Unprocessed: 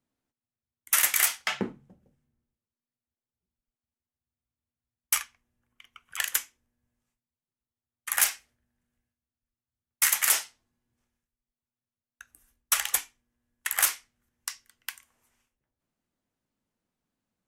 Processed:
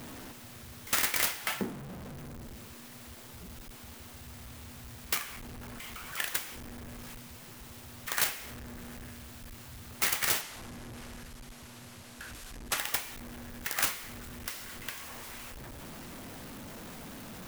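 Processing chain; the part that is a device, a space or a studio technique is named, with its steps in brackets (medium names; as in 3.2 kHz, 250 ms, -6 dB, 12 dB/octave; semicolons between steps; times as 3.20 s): early CD player with a faulty converter (jump at every zero crossing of -32.5 dBFS; sampling jitter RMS 0.044 ms); 10.41–12.78 s: low-pass 12 kHz 12 dB/octave; trim -5 dB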